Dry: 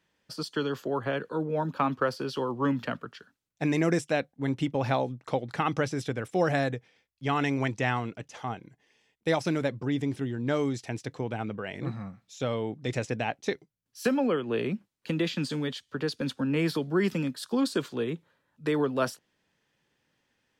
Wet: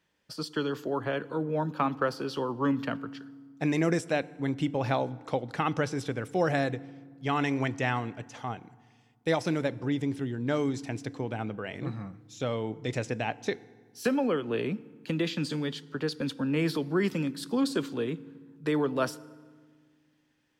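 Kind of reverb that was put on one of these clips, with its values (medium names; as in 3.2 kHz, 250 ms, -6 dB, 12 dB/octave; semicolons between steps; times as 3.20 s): FDN reverb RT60 1.6 s, low-frequency decay 1.6×, high-frequency decay 0.65×, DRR 18.5 dB; trim -1 dB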